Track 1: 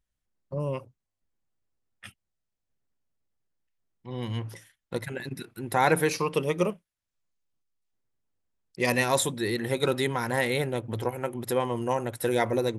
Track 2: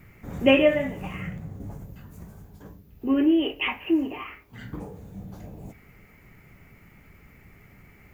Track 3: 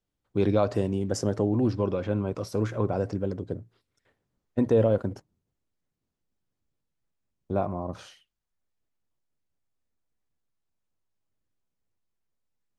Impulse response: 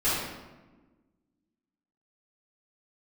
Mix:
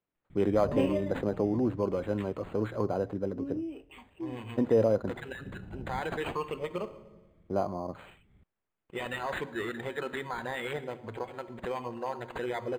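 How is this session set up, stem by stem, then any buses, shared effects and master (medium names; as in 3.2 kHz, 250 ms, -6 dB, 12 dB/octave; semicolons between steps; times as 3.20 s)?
-0.5 dB, 0.15 s, send -23.5 dB, reverb removal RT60 0.82 s; bass shelf 440 Hz -10 dB; peak limiter -22 dBFS, peak gain reduction 10 dB
-10.0 dB, 0.30 s, no send, bass shelf 380 Hz +12 dB; auto duck -13 dB, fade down 1.60 s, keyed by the third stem
-1.0 dB, 0.00 s, no send, high-pass 220 Hz 6 dB/octave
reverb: on, RT60 1.2 s, pre-delay 3 ms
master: decimation joined by straight lines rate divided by 8×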